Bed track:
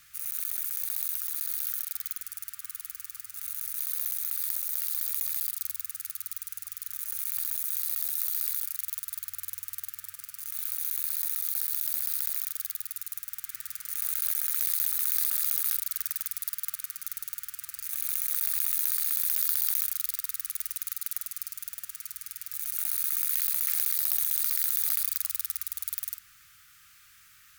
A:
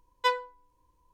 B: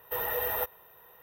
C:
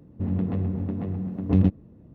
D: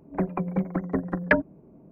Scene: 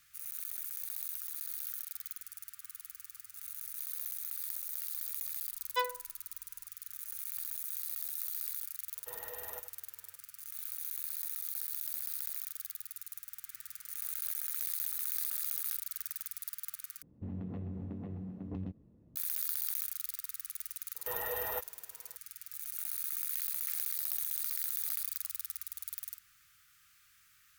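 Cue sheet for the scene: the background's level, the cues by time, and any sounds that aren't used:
bed track −8.5 dB
0:05.52: mix in A −6.5 dB
0:08.95: mix in B −15.5 dB + single-tap delay 85 ms −11.5 dB
0:17.02: overwrite with C −12.5 dB + downward compressor, threshold −23 dBFS
0:20.95: mix in B −6 dB
not used: D

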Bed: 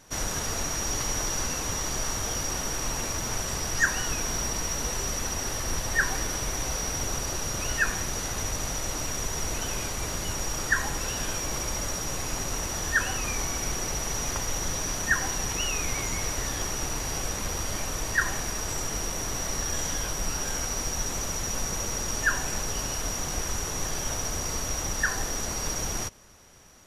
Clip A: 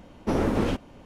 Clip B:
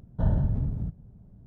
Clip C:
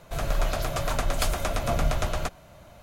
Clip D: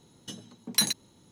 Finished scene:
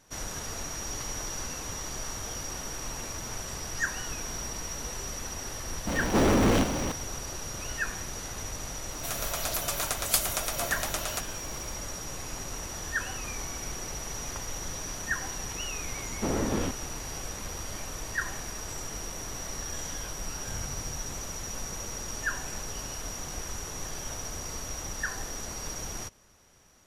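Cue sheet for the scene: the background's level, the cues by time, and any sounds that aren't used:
bed −6.5 dB
0:05.87: mix in A −4.5 dB + power curve on the samples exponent 0.35
0:08.92: mix in C −5 dB + RIAA equalisation recording
0:15.95: mix in A −5 dB
0:20.28: mix in B −16.5 dB
not used: D

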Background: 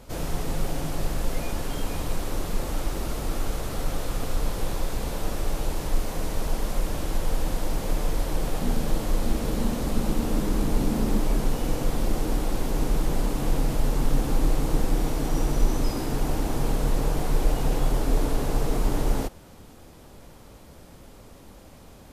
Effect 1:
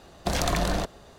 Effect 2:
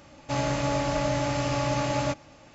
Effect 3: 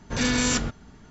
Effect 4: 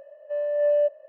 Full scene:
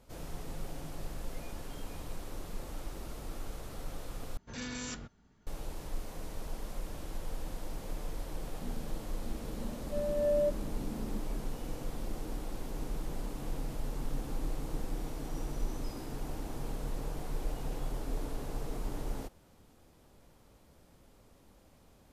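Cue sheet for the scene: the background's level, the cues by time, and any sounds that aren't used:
background −13.5 dB
0:04.37: overwrite with 3 −17 dB
0:09.62: mix in 4 −7.5 dB + parametric band 1,400 Hz −15 dB 0.44 octaves
not used: 1, 2

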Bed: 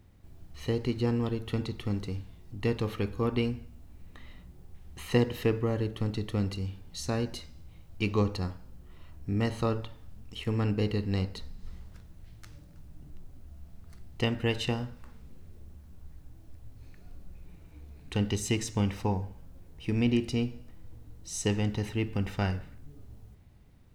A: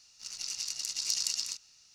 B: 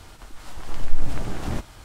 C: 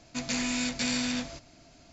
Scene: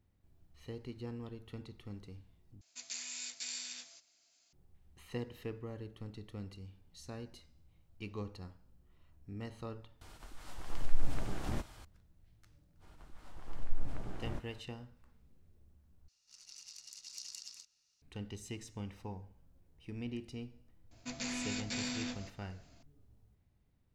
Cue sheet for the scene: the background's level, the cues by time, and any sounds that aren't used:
bed −15.5 dB
0:02.61: overwrite with C −6 dB + first difference
0:10.01: overwrite with B −9 dB
0:12.79: mix in B −13 dB, fades 0.05 s + high-shelf EQ 2,600 Hz −9 dB
0:16.08: overwrite with A −16 dB
0:20.91: mix in C −9 dB

